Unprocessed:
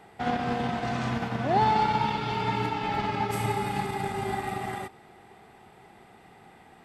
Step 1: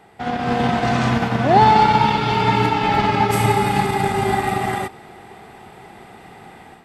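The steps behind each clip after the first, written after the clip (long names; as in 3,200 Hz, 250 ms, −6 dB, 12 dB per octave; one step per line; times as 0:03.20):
automatic gain control gain up to 9 dB
level +2.5 dB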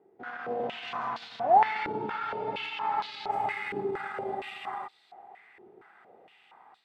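band-pass on a step sequencer 4.3 Hz 380–4,000 Hz
level −4 dB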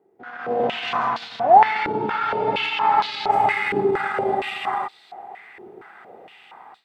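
automatic gain control gain up to 12 dB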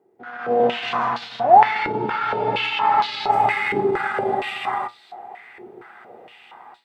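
tuned comb filter 120 Hz, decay 0.2 s, harmonics all, mix 60%
level +5.5 dB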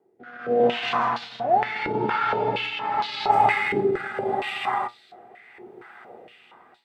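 rotating-speaker cabinet horn 0.8 Hz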